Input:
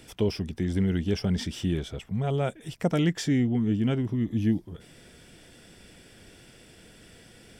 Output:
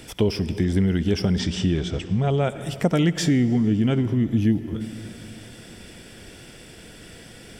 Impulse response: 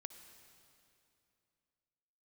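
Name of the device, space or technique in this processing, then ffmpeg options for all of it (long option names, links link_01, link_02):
ducked reverb: -filter_complex "[0:a]asplit=3[link_01][link_02][link_03];[1:a]atrim=start_sample=2205[link_04];[link_02][link_04]afir=irnorm=-1:irlink=0[link_05];[link_03]apad=whole_len=334828[link_06];[link_05][link_06]sidechaincompress=threshold=-29dB:ratio=8:attack=40:release=210,volume=9dB[link_07];[link_01][link_07]amix=inputs=2:normalize=0,asplit=3[link_08][link_09][link_10];[link_08]afade=type=out:start_time=1.38:duration=0.02[link_11];[link_09]lowpass=frequency=7800:width=0.5412,lowpass=frequency=7800:width=1.3066,afade=type=in:start_time=1.38:duration=0.02,afade=type=out:start_time=2.48:duration=0.02[link_12];[link_10]afade=type=in:start_time=2.48:duration=0.02[link_13];[link_11][link_12][link_13]amix=inputs=3:normalize=0"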